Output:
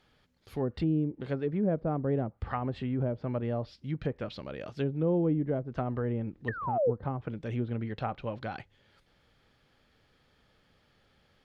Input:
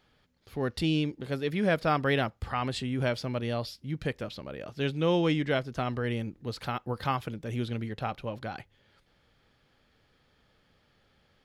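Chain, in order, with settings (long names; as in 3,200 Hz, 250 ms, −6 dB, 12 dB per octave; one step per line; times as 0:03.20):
sound drawn into the spectrogram fall, 0:06.48–0:06.91, 430–1,900 Hz −22 dBFS
treble cut that deepens with the level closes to 520 Hz, closed at −25 dBFS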